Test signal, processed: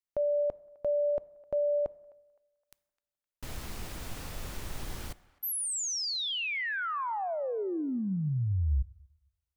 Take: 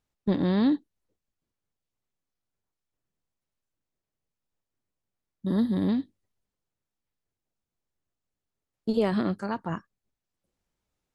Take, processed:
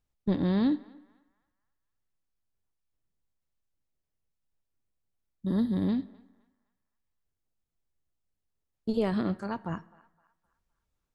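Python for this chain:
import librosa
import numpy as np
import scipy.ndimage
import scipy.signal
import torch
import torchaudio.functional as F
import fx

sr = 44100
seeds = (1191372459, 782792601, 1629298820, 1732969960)

y = fx.low_shelf(x, sr, hz=92.0, db=10.5)
y = fx.echo_banded(y, sr, ms=258, feedback_pct=42, hz=1400.0, wet_db=-21.0)
y = fx.rev_plate(y, sr, seeds[0], rt60_s=0.99, hf_ratio=0.7, predelay_ms=0, drr_db=18.5)
y = y * 10.0 ** (-4.0 / 20.0)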